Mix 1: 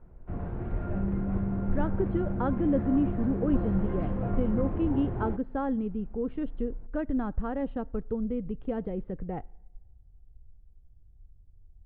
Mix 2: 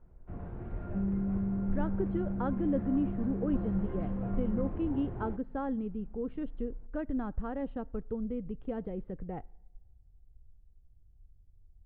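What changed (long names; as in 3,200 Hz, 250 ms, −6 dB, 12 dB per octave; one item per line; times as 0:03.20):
speech −4.5 dB
first sound −7.0 dB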